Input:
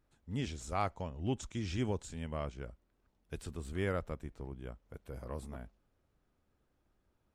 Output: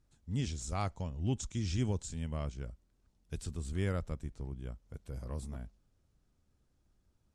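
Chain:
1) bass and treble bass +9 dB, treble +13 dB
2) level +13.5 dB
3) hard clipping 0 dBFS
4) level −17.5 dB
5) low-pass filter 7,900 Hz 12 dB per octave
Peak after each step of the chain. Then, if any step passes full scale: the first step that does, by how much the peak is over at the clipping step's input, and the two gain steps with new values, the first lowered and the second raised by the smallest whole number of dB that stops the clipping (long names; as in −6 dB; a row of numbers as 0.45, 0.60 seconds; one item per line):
−16.0, −2.5, −2.5, −20.0, −20.0 dBFS
no step passes full scale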